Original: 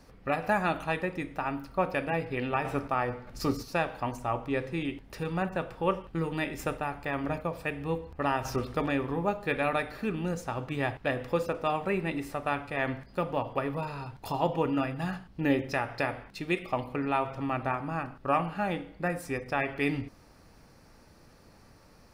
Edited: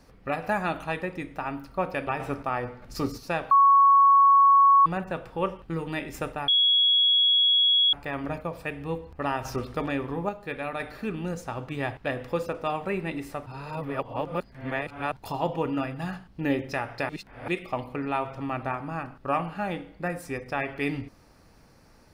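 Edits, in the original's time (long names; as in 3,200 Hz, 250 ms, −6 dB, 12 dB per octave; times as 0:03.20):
0:02.07–0:02.52: remove
0:03.96–0:05.31: beep over 1,110 Hz −13.5 dBFS
0:06.93: insert tone 3,340 Hz −17.5 dBFS 1.45 s
0:09.29–0:09.80: clip gain −4.5 dB
0:12.46–0:14.12: reverse
0:16.09–0:16.48: reverse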